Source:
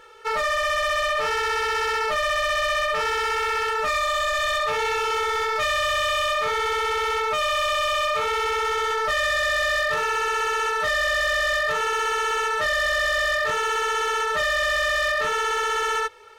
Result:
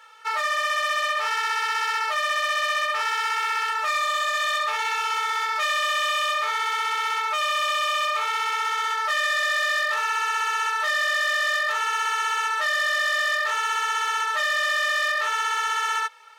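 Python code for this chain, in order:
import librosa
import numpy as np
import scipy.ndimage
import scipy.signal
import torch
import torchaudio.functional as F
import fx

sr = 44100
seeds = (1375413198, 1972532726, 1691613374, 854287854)

y = scipy.signal.sosfilt(scipy.signal.butter(4, 730.0, 'highpass', fs=sr, output='sos'), x)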